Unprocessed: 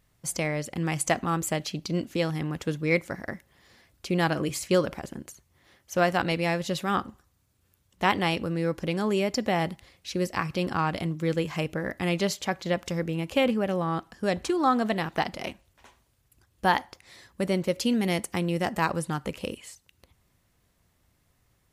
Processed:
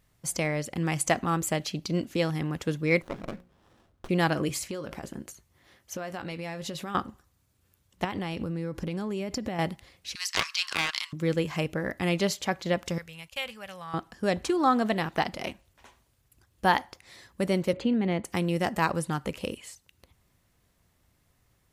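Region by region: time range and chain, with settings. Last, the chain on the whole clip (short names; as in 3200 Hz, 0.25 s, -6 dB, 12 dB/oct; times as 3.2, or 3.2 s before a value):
3.02–4.09 high shelf 3400 Hz -6 dB + notches 60/120/180/240/300/360/420/480/540 Hz + running maximum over 17 samples
4.64–6.95 doubler 19 ms -13 dB + compressor 12:1, threshold -31 dBFS
8.04–9.59 low shelf 250 Hz +8 dB + compressor 16:1, threshold -27 dBFS
10.15–11.13 steep high-pass 980 Hz 72 dB/oct + bell 4800 Hz +13 dB 1.8 oct + Doppler distortion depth 0.35 ms
12.98–13.94 gate -40 dBFS, range -20 dB + passive tone stack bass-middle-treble 10-0-10
17.73–18.25 Butterworth band-stop 5400 Hz, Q 4.9 + tape spacing loss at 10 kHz 28 dB + three-band squash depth 40%
whole clip: dry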